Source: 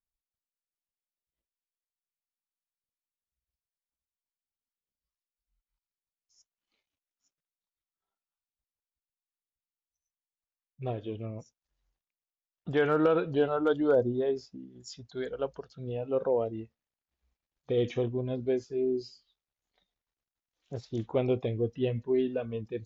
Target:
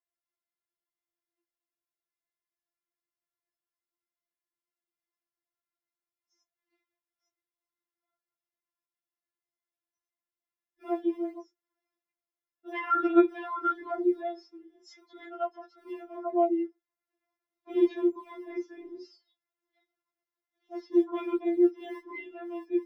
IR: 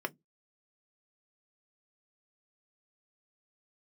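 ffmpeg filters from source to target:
-filter_complex "[0:a]acrossover=split=110|740|1300[link_01][link_02][link_03][link_04];[link_01]acrusher=samples=30:mix=1:aa=0.000001:lfo=1:lforange=48:lforate=1.2[link_05];[link_05][link_02][link_03][link_04]amix=inputs=4:normalize=0[link_06];[1:a]atrim=start_sample=2205,atrim=end_sample=6174[link_07];[link_06][link_07]afir=irnorm=-1:irlink=0,afftfilt=real='re*4*eq(mod(b,16),0)':imag='im*4*eq(mod(b,16),0)':win_size=2048:overlap=0.75"

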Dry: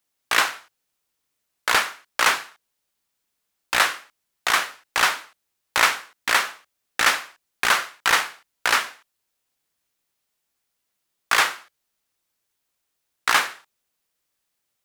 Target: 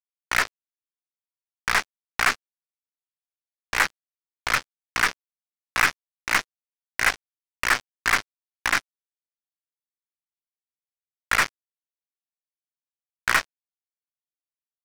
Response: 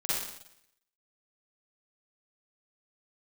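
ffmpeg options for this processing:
-filter_complex "[0:a]highpass=frequency=370:width_type=q:width=0.5412,highpass=frequency=370:width_type=q:width=1.307,lowpass=frequency=2300:width_type=q:width=0.5176,lowpass=frequency=2300:width_type=q:width=0.7071,lowpass=frequency=2300:width_type=q:width=1.932,afreqshift=230,aeval=exprs='0.631*(cos(1*acos(clip(val(0)/0.631,-1,1)))-cos(1*PI/2))+0.251*(cos(2*acos(clip(val(0)/0.631,-1,1)))-cos(2*PI/2))+0.112*(cos(4*acos(clip(val(0)/0.631,-1,1)))-cos(4*PI/2))':channel_layout=same,asplit=2[link_01][link_02];[1:a]atrim=start_sample=2205,afade=type=out:start_time=0.17:duration=0.01,atrim=end_sample=7938[link_03];[link_02][link_03]afir=irnorm=-1:irlink=0,volume=-31dB[link_04];[link_01][link_04]amix=inputs=2:normalize=0,acrusher=bits=2:mix=0:aa=0.5,volume=-1dB"

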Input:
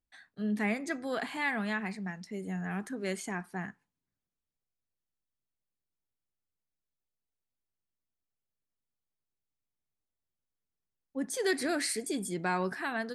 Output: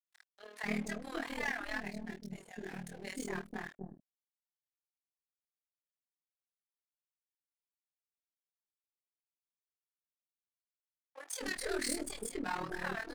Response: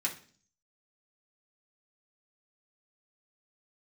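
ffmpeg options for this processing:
-filter_complex "[0:a]acrossover=split=260|3000[link_01][link_02][link_03];[link_01]acompressor=threshold=-46dB:ratio=3[link_04];[link_04][link_02][link_03]amix=inputs=3:normalize=0,bandreject=frequency=50:width_type=h:width=6,bandreject=frequency=100:width_type=h:width=6,bandreject=frequency=150:width_type=h:width=6,bandreject=frequency=200:width_type=h:width=6,bandreject=frequency=250:width_type=h:width=6,bandreject=frequency=300:width_type=h:width=6,bandreject=frequency=350:width_type=h:width=6,aeval=exprs='(tanh(31.6*val(0)+0.3)-tanh(0.3))/31.6':channel_layout=same,flanger=delay=18.5:depth=2.1:speed=2.1,tremolo=f=39:d=0.75,aeval=exprs='sgn(val(0))*max(abs(val(0))-0.00133,0)':channel_layout=same,asettb=1/sr,asplit=3[link_05][link_06][link_07];[link_05]atrim=end=1.804[link_08];[link_06]atrim=start=1.8:end=3.22,asetpts=PTS-STARTPTS,afade=type=in:duration=0.004:curve=qsin,afade=type=out:start_time=1.416:duration=0.004:curve=qsin,equalizer=frequency=1200:width_type=o:width=0.73:gain=-11.5[link_09];[link_07]atrim=start=3.216[link_10];[link_08][link_09]acrossfade=duration=0.004:curve1=hsin:curve2=qsin[link_11];[link_11][link_10]acrossfade=duration=0.004:curve1=qsin:curve2=hsin,acrossover=split=570[link_12][link_13];[link_12]adelay=250[link_14];[link_14][link_13]amix=inputs=2:normalize=0,volume=6.5dB"

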